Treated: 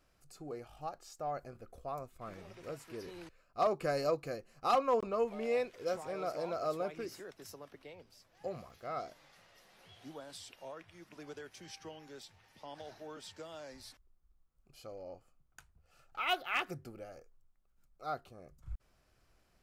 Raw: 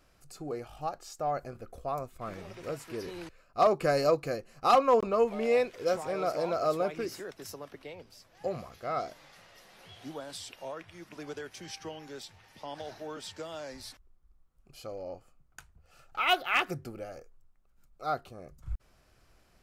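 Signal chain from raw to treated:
0:08.48–0:09.00: surface crackle 40 per second → 190 per second −50 dBFS
level −7 dB

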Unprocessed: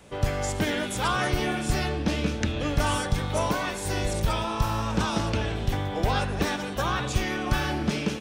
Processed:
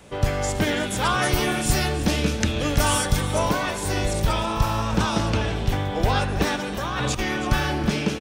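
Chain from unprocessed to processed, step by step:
0:01.22–0:03.21: high-shelf EQ 6,600 Hz +11.5 dB
0:06.77–0:07.19: compressor whose output falls as the input rises −30 dBFS, ratio −1
single-tap delay 325 ms −14 dB
level +3.5 dB

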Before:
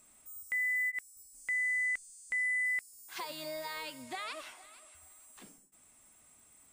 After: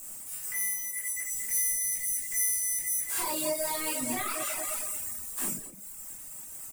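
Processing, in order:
gap after every zero crossing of 0.056 ms
0:01.07–0:02.97: parametric band 1,300 Hz −15 dB 1.3 octaves
repeating echo 216 ms, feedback 27%, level −11 dB
leveller curve on the samples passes 2
downward compressor 6 to 1, threshold −40 dBFS, peak gain reduction 11.5 dB
brickwall limiter −38.5 dBFS, peak gain reduction 11 dB
high shelf with overshoot 6,100 Hz +14 dB, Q 1.5
rectangular room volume 200 cubic metres, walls mixed, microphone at 3 metres
reverb reduction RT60 0.89 s
level +3.5 dB

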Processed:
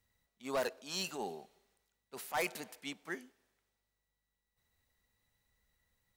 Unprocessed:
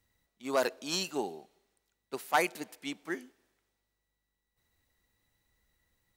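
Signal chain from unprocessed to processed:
parametric band 320 Hz −8.5 dB 0.31 octaves
0:00.73–0:02.81: transient designer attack −8 dB, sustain +4 dB
hard clipping −25.5 dBFS, distortion −11 dB
level −3 dB

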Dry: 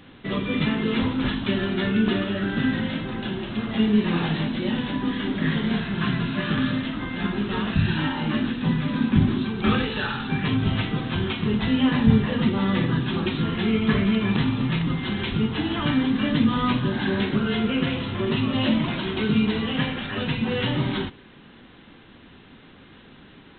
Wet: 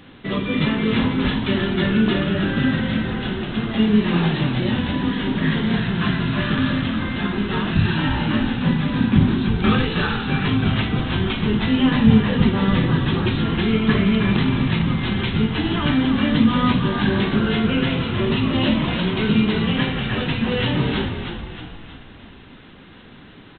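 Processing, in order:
echo with shifted repeats 315 ms, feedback 51%, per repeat −42 Hz, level −7 dB
level +3 dB

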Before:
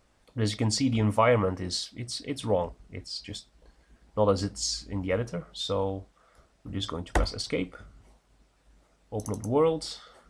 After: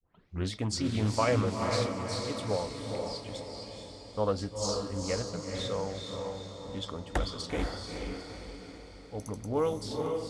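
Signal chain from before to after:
turntable start at the beginning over 0.51 s
feedback delay with all-pass diffusion 461 ms, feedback 51%, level −3 dB
highs frequency-modulated by the lows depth 0.29 ms
level −5.5 dB

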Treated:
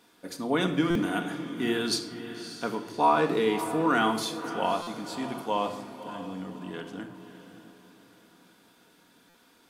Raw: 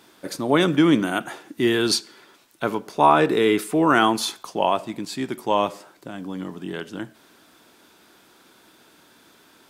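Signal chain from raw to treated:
feedback delay with all-pass diffusion 584 ms, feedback 41%, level −11.5 dB
rectangular room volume 3,100 cubic metres, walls furnished, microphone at 1.8 metres
buffer that repeats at 0:00.90/0:04.82/0:09.29, samples 256, times 8
level −8.5 dB

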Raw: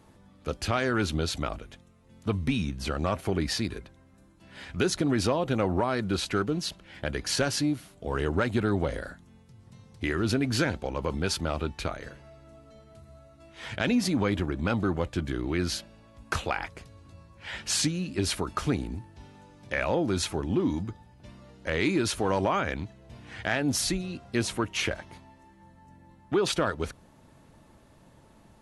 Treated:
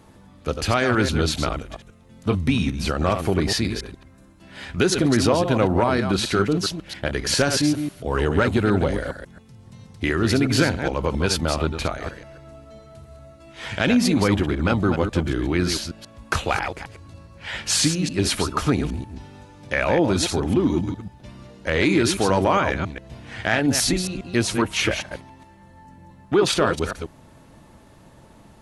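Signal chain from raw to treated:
delay that plays each chunk backwards 136 ms, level −7 dB
level +6.5 dB

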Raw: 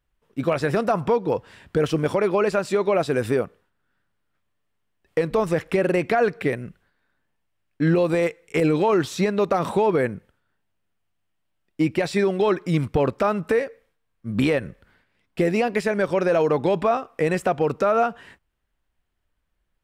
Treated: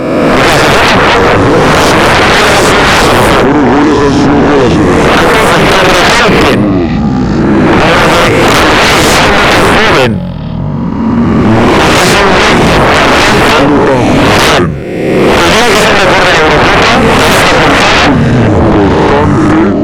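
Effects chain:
peak hold with a rise ahead of every peak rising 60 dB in 1.36 s
delay with pitch and tempo change per echo 416 ms, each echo −6 semitones, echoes 3, each echo −6 dB
sine wavefolder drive 17 dB, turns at −3 dBFS
level +1.5 dB

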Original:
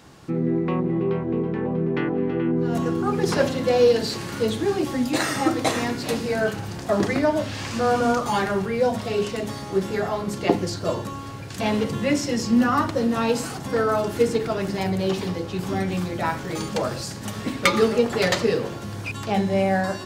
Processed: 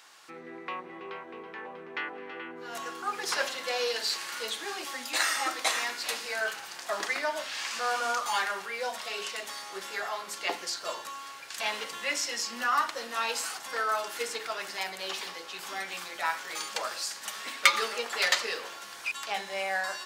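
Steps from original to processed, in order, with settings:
high-pass filter 1,200 Hz 12 dB per octave

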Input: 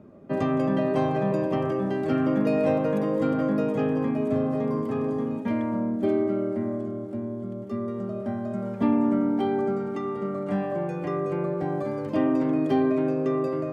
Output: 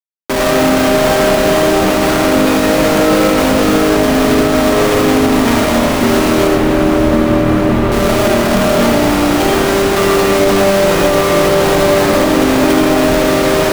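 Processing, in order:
spectral tilt +4.5 dB per octave
downward compressor 10 to 1, threshold −34 dBFS, peak gain reduction 12 dB
comparator with hysteresis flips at −42 dBFS
0:06.47–0:07.92: high-frequency loss of the air 370 metres
feedback delay with all-pass diffusion 677 ms, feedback 62%, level −9.5 dB
comb and all-pass reverb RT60 1.2 s, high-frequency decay 0.45×, pre-delay 45 ms, DRR 0 dB
boost into a limiter +24.5 dB
level −1 dB

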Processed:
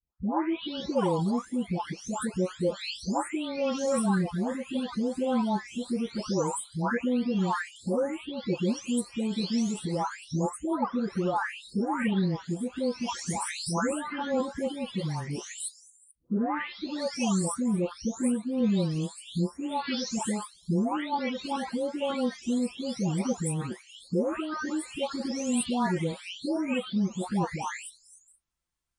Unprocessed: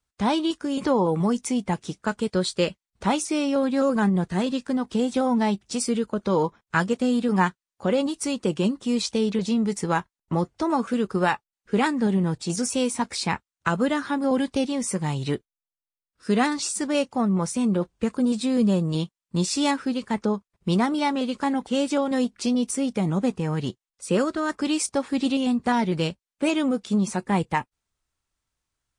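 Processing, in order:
every frequency bin delayed by itself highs late, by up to 765 ms
level −3.5 dB

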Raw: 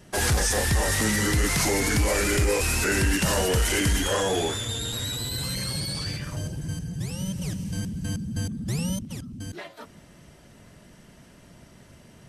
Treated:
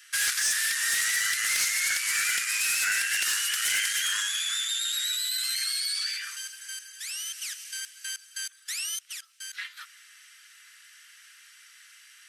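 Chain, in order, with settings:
Butterworth high-pass 1,400 Hz 48 dB per octave
downward compressor 1.5 to 1, threshold −38 dBFS, peak gain reduction 6 dB
hard clipping −26.5 dBFS, distortion −20 dB
level +6.5 dB

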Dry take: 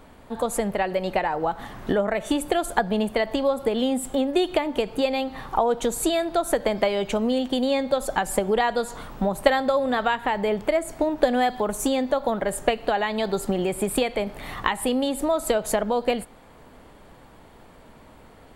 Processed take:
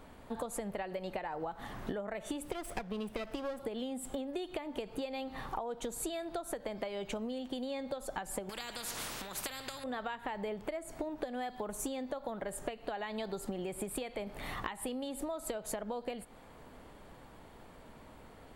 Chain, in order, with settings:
0:02.43–0:03.60: lower of the sound and its delayed copy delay 0.37 ms
downward compressor 12 to 1, threshold −30 dBFS, peak gain reduction 19.5 dB
0:08.49–0:09.84: every bin compressed towards the loudest bin 4 to 1
level −5 dB

